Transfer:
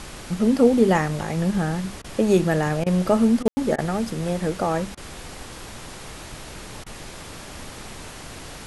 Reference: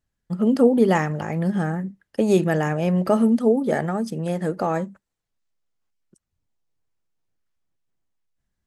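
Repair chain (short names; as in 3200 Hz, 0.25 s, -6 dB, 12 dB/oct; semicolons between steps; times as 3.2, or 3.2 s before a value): room tone fill 3.48–3.57; interpolate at 2.02/2.84/3.43/3.76/4.95/6.84, 22 ms; noise print and reduce 30 dB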